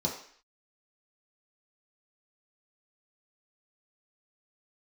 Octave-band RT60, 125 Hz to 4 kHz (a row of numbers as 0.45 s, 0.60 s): 0.35 s, 0.50 s, 0.50 s, 0.55 s, 0.65 s, 0.60 s